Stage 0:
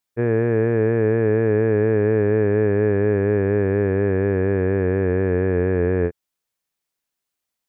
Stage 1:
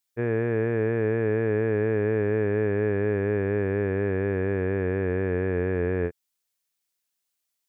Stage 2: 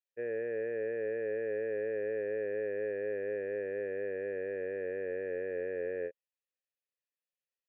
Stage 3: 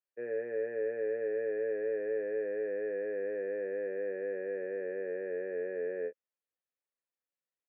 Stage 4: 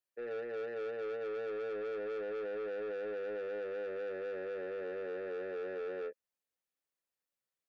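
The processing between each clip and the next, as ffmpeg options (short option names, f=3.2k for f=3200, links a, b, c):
-af "highshelf=f=2.2k:g=9.5,volume=-6.5dB"
-filter_complex "[0:a]asplit=3[a][b][c];[a]bandpass=f=530:t=q:w=8,volume=0dB[d];[b]bandpass=f=1.84k:t=q:w=8,volume=-6dB[e];[c]bandpass=f=2.48k:t=q:w=8,volume=-9dB[f];[d][e][f]amix=inputs=3:normalize=0"
-filter_complex "[0:a]acrossover=split=170 2200:gain=0.224 1 0.178[a][b][c];[a][b][c]amix=inputs=3:normalize=0,asplit=2[d][e];[e]adelay=16,volume=-7dB[f];[d][f]amix=inputs=2:normalize=0"
-af "asoftclip=type=tanh:threshold=-37dB,volume=1dB"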